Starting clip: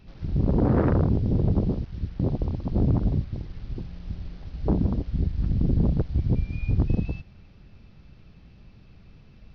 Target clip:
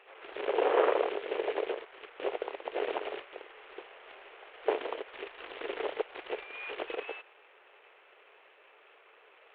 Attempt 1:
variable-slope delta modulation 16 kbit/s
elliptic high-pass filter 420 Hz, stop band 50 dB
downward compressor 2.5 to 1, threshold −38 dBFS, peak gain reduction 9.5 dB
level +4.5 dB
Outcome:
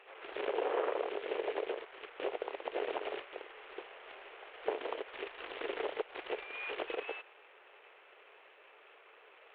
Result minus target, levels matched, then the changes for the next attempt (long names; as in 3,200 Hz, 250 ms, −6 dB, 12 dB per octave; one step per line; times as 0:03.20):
downward compressor: peak gain reduction +9.5 dB
remove: downward compressor 2.5 to 1, threshold −38 dBFS, peak gain reduction 9.5 dB